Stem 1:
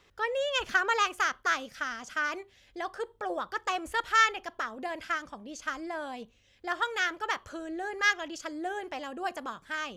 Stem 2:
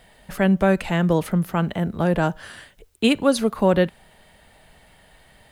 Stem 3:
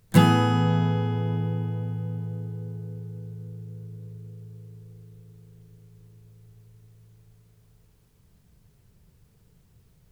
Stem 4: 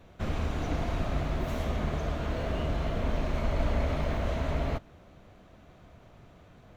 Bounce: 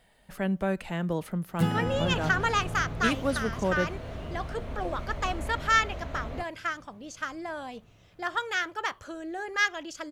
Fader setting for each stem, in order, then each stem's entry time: 0.0, −10.5, −11.5, −7.5 decibels; 1.55, 0.00, 1.45, 1.65 seconds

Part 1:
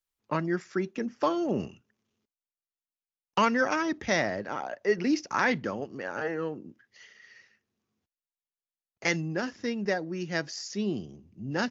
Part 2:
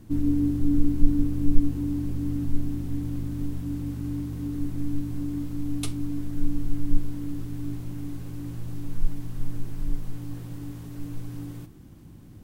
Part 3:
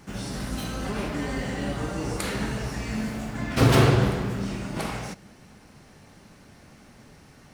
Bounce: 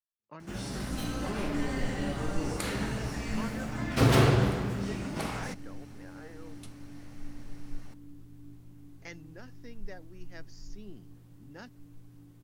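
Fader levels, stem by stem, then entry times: −18.5, −17.5, −4.0 decibels; 0.00, 0.80, 0.40 seconds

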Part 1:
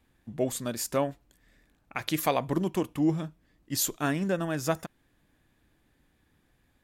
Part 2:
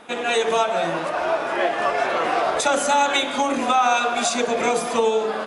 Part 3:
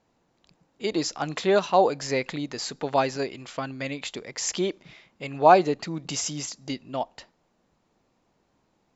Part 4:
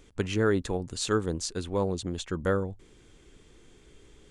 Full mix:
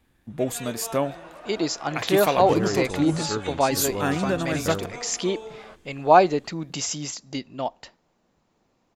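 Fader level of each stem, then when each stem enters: +3.0, −18.5, +1.0, −3.5 decibels; 0.00, 0.30, 0.65, 2.20 seconds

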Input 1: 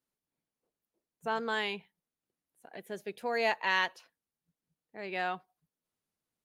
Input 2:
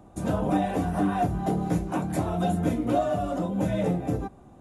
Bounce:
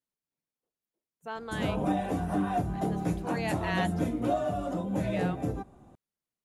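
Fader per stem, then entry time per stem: −5.5, −4.0 decibels; 0.00, 1.35 seconds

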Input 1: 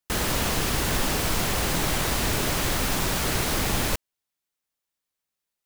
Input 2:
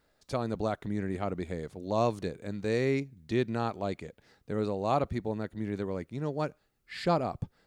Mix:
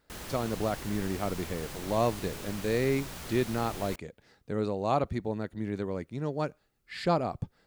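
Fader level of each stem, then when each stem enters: −16.5, +0.5 decibels; 0.00, 0.00 seconds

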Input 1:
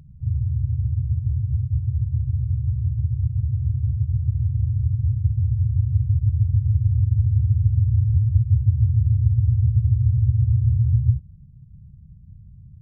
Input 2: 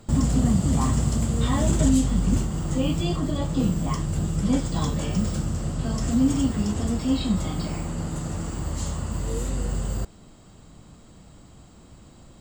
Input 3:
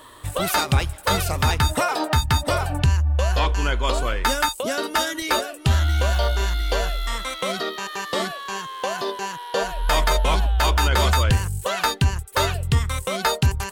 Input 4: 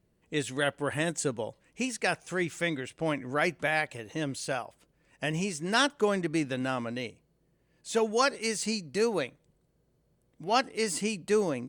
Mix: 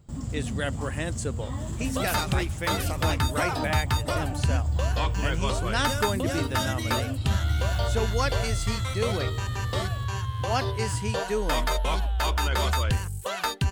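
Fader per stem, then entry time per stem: −12.5, −13.5, −6.5, −2.5 decibels; 0.00, 0.00, 1.60, 0.00 seconds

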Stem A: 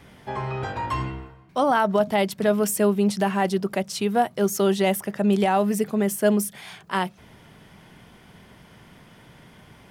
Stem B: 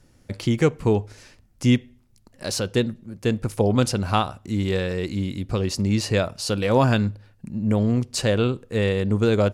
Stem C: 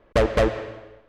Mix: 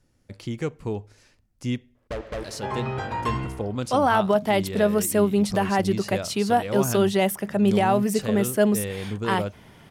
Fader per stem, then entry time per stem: 0.0, −9.5, −13.0 decibels; 2.35, 0.00, 1.95 seconds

